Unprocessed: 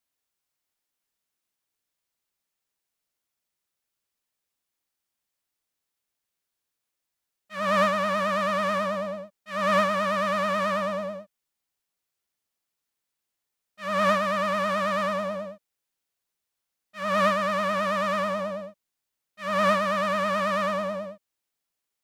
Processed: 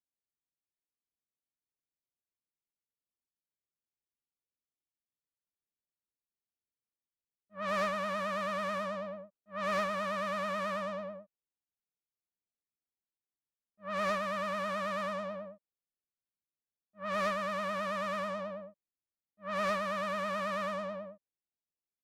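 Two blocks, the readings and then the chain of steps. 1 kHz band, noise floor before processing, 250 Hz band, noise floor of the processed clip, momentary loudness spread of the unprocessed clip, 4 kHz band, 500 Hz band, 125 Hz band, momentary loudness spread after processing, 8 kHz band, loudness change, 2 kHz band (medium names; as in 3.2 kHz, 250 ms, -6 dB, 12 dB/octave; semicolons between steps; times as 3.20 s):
-9.5 dB, -84 dBFS, -10.0 dB, under -85 dBFS, 13 LU, -9.5 dB, -9.5 dB, -10.0 dB, 13 LU, -9.0 dB, -9.5 dB, -9.0 dB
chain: level-controlled noise filter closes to 420 Hz, open at -21.5 dBFS; one-sided clip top -24 dBFS; trim -9 dB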